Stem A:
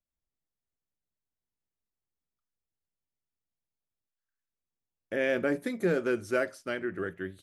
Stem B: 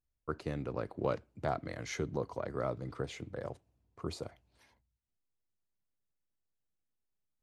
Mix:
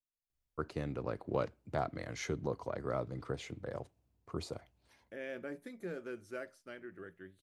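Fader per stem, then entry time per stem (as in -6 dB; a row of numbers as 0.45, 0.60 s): -15.0, -1.0 dB; 0.00, 0.30 s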